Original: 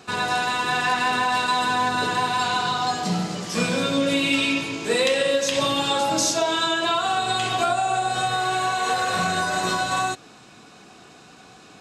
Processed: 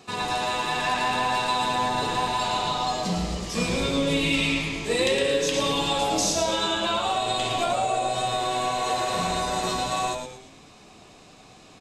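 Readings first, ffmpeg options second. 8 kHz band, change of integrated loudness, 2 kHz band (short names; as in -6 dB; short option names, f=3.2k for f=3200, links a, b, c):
-2.0 dB, -2.5 dB, -5.5 dB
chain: -filter_complex "[0:a]equalizer=f=1.5k:t=o:w=0.21:g=-11.5,asplit=6[a][b][c][d][e][f];[b]adelay=112,afreqshift=-120,volume=-6dB[g];[c]adelay=224,afreqshift=-240,volume=-13.5dB[h];[d]adelay=336,afreqshift=-360,volume=-21.1dB[i];[e]adelay=448,afreqshift=-480,volume=-28.6dB[j];[f]adelay=560,afreqshift=-600,volume=-36.1dB[k];[a][g][h][i][j][k]amix=inputs=6:normalize=0,volume=-3dB"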